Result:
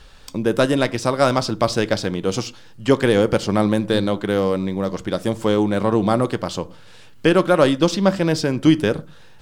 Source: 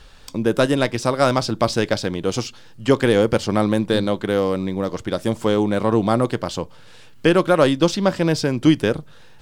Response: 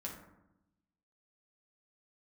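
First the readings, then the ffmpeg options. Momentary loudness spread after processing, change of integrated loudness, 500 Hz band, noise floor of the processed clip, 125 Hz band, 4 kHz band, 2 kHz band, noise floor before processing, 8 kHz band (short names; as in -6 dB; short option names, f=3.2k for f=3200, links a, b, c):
9 LU, +0.5 dB, 0.0 dB, -43 dBFS, 0.0 dB, 0.0 dB, 0.0 dB, -43 dBFS, 0.0 dB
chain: -filter_complex "[0:a]asplit=2[a][b];[1:a]atrim=start_sample=2205,atrim=end_sample=6174[c];[b][c]afir=irnorm=-1:irlink=0,volume=-12dB[d];[a][d]amix=inputs=2:normalize=0,volume=-1dB"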